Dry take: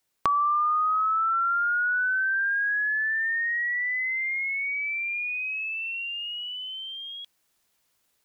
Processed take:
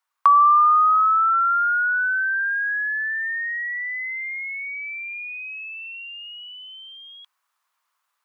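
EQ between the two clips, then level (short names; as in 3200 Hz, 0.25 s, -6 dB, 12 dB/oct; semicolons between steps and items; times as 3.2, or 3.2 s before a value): resonant high-pass 1100 Hz, resonance Q 3.8; high shelf 2200 Hz -8.5 dB; 0.0 dB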